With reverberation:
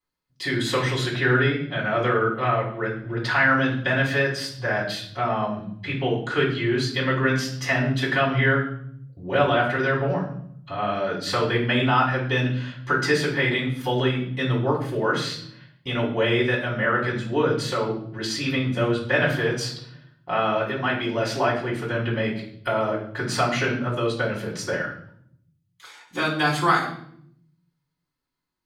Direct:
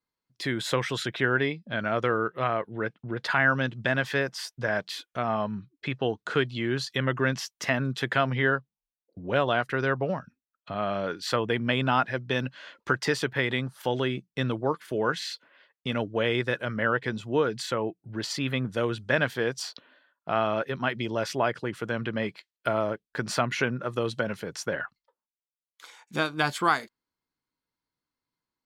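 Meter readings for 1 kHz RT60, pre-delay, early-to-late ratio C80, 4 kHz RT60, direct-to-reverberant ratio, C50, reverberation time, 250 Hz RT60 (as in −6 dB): 0.60 s, 3 ms, 10.0 dB, 0.55 s, −5.5 dB, 6.5 dB, 0.65 s, 1.1 s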